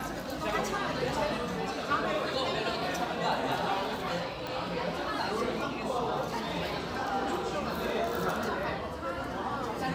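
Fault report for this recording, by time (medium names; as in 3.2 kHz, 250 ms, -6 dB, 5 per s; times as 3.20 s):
4.47 s: pop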